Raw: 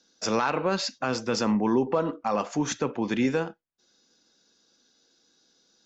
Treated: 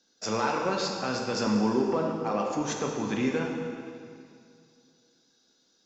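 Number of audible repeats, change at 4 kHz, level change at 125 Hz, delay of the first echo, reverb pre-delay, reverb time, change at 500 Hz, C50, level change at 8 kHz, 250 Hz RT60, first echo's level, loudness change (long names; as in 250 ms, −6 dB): no echo audible, −2.0 dB, −1.0 dB, no echo audible, 6 ms, 2.3 s, −1.5 dB, 2.5 dB, can't be measured, 2.5 s, no echo audible, −2.0 dB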